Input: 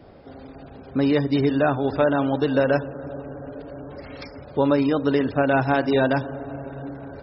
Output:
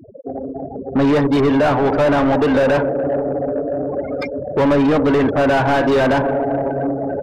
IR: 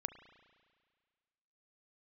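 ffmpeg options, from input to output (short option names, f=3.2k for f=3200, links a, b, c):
-filter_complex "[0:a]afftfilt=real='re*gte(hypot(re,im),0.0251)':imag='im*gte(hypot(re,im),0.0251)':win_size=1024:overlap=0.75,asplit=2[a][b];[b]highpass=f=720:p=1,volume=30dB,asoftclip=type=tanh:threshold=-7dB[c];[a][c]amix=inputs=2:normalize=0,lowpass=f=1.2k:p=1,volume=-6dB"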